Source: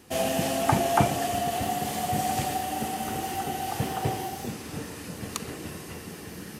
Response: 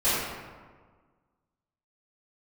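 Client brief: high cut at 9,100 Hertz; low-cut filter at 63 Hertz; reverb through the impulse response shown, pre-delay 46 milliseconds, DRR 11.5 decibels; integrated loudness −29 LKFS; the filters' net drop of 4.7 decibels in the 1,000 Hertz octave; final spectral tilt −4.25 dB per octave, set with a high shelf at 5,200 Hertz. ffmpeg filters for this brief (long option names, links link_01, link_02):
-filter_complex "[0:a]highpass=63,lowpass=9100,equalizer=frequency=1000:width_type=o:gain=-8,highshelf=frequency=5200:gain=8,asplit=2[link_01][link_02];[1:a]atrim=start_sample=2205,adelay=46[link_03];[link_02][link_03]afir=irnorm=-1:irlink=0,volume=-26.5dB[link_04];[link_01][link_04]amix=inputs=2:normalize=0,volume=1dB"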